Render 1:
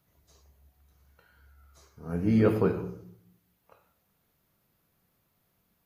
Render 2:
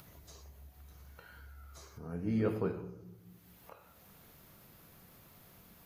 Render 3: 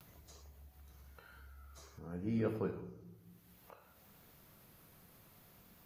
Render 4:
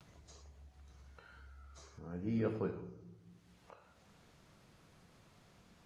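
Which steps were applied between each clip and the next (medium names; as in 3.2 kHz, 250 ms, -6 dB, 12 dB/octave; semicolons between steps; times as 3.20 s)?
upward compressor, threshold -30 dBFS; trim -9 dB
vibrato 0.56 Hz 43 cents; trim -3.5 dB
low-pass 8.2 kHz 24 dB/octave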